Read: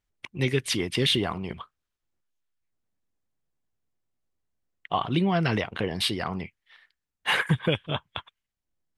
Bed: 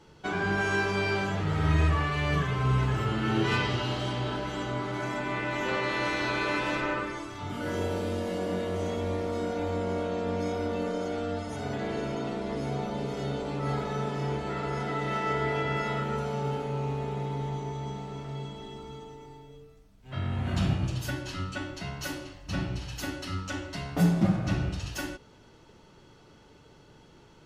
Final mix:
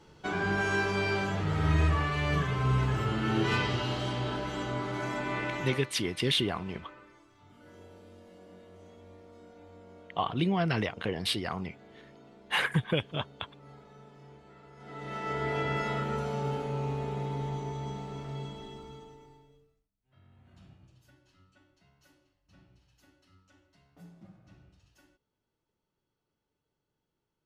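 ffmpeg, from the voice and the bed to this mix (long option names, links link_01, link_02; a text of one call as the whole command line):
ffmpeg -i stem1.wav -i stem2.wav -filter_complex "[0:a]adelay=5250,volume=-4dB[link_01];[1:a]volume=19dB,afade=type=out:start_time=5.43:duration=0.47:silence=0.0944061,afade=type=in:start_time=14.77:duration=0.85:silence=0.0944061,afade=type=out:start_time=18.5:duration=1.39:silence=0.0398107[link_02];[link_01][link_02]amix=inputs=2:normalize=0" out.wav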